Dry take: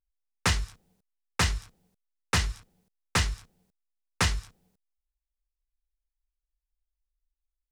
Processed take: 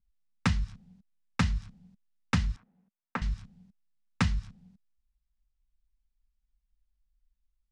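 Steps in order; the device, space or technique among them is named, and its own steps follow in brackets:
jukebox (low-pass filter 5,400 Hz 12 dB per octave; low shelf with overshoot 280 Hz +9.5 dB, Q 3; downward compressor 4 to 1, threshold −25 dBFS, peak gain reduction 12 dB)
0:02.56–0:03.22: three-way crossover with the lows and the highs turned down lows −24 dB, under 260 Hz, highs −20 dB, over 2,000 Hz

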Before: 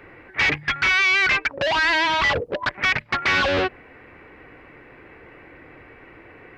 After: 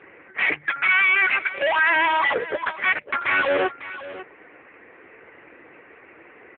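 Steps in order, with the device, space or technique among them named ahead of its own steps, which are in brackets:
satellite phone (band-pass filter 310–3,100 Hz; single-tap delay 551 ms −15 dB; level +2.5 dB; AMR narrowband 6.7 kbit/s 8,000 Hz)

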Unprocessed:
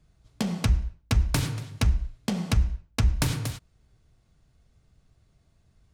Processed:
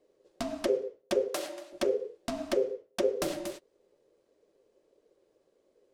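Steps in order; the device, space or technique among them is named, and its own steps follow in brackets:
alien voice (ring modulation 460 Hz; flanger 1.6 Hz, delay 2.7 ms, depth 7 ms, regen −48%)
0:01.28–0:01.73: high-pass filter 490 Hz 12 dB per octave

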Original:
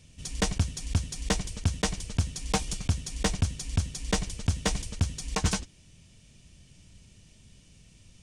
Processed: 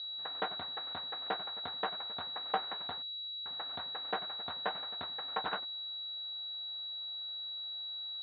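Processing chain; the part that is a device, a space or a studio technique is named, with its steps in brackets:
0:03.02–0:03.46: inverse Chebyshev band-stop filter 170–8,900 Hz, stop band 60 dB
toy sound module (linearly interpolated sample-rate reduction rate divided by 6×; switching amplifier with a slow clock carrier 3,900 Hz; loudspeaker in its box 560–4,300 Hz, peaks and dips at 750 Hz +6 dB, 1,400 Hz +4 dB, 2,300 Hz −5 dB, 3,600 Hz +6 dB)
level −3.5 dB

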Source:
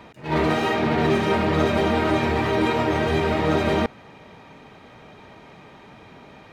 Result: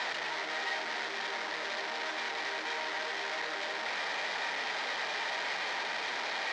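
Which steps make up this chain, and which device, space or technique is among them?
home computer beeper (sign of each sample alone; loudspeaker in its box 790–5,100 Hz, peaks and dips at 1,200 Hz −5 dB, 1,900 Hz +5 dB, 2,700 Hz −4 dB)
level −8 dB

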